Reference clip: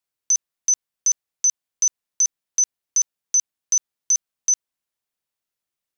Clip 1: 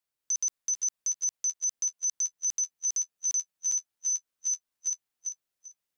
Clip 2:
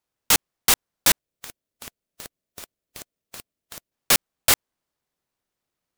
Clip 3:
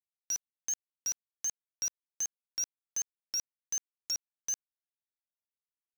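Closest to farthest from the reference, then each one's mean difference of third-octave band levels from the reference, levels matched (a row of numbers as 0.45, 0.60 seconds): 1, 3, 2; 1.5, 7.5, 14.5 decibels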